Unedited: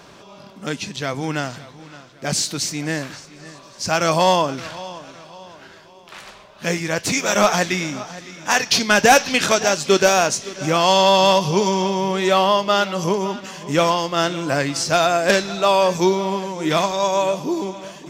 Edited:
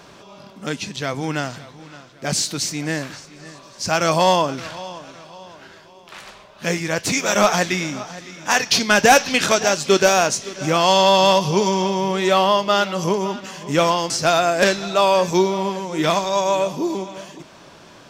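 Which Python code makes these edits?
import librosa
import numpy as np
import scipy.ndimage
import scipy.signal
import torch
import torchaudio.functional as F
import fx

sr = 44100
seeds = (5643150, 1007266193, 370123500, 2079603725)

y = fx.edit(x, sr, fx.cut(start_s=14.1, length_s=0.67), tone=tone)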